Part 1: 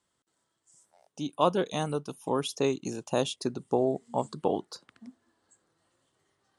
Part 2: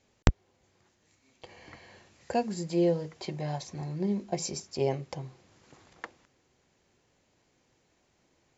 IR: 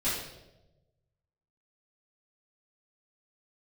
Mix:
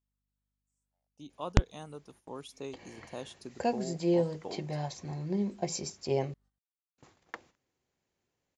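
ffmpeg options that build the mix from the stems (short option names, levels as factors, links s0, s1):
-filter_complex "[0:a]aeval=exprs='val(0)+0.00112*(sin(2*PI*50*n/s)+sin(2*PI*2*50*n/s)/2+sin(2*PI*3*50*n/s)/3+sin(2*PI*4*50*n/s)/4+sin(2*PI*5*50*n/s)/5)':c=same,volume=0.188[s0];[1:a]adelay=1300,volume=0.841,asplit=3[s1][s2][s3];[s1]atrim=end=6.34,asetpts=PTS-STARTPTS,afade=t=out:st=6.336:d=0.004:c=hsin[s4];[s2]atrim=start=6.34:end=6.98,asetpts=PTS-STARTPTS,volume=0[s5];[s3]atrim=start=6.98,asetpts=PTS-STARTPTS,afade=t=in:d=0.004:c=hsin[s6];[s4][s5][s6]concat=n=3:v=0:a=1[s7];[s0][s7]amix=inputs=2:normalize=0,agate=range=0.251:threshold=0.00126:ratio=16:detection=peak"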